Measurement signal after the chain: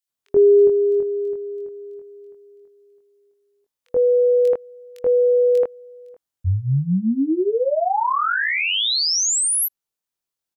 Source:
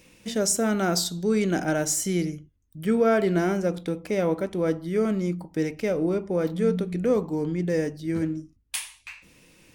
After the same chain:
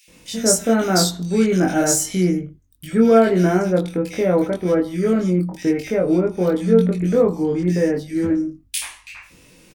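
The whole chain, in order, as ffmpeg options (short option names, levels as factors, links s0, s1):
-filter_complex "[0:a]asplit=2[s0][s1];[s1]adelay=22,volume=0.794[s2];[s0][s2]amix=inputs=2:normalize=0,acrossover=split=2200[s3][s4];[s3]adelay=80[s5];[s5][s4]amix=inputs=2:normalize=0,volume=1.68"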